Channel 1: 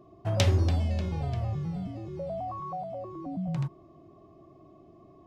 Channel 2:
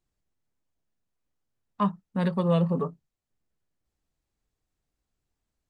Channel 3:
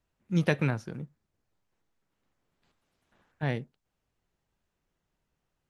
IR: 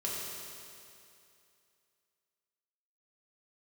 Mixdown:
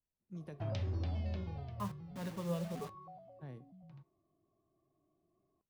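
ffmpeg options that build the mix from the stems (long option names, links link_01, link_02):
-filter_complex "[0:a]lowpass=frequency=5100:width=0.5412,lowpass=frequency=5100:width=1.3066,adelay=350,volume=-3.5dB,afade=type=out:start_time=1.27:duration=0.47:silence=0.398107,afade=type=out:start_time=3.01:duration=0.52:silence=0.354813[link_01];[1:a]acrusher=bits=5:mix=0:aa=0.000001,volume=-11dB[link_02];[2:a]equalizer=frequency=2400:width=0.56:gain=-11,acompressor=threshold=-28dB:ratio=6,volume=-11dB[link_03];[link_01][link_03]amix=inputs=2:normalize=0,acrossover=split=260[link_04][link_05];[link_05]acompressor=threshold=-35dB:ratio=4[link_06];[link_04][link_06]amix=inputs=2:normalize=0,alimiter=level_in=1dB:limit=-24dB:level=0:latency=1:release=102,volume=-1dB,volume=0dB[link_07];[link_02][link_07]amix=inputs=2:normalize=0,flanger=delay=4.6:depth=5.9:regen=85:speed=0.36:shape=triangular"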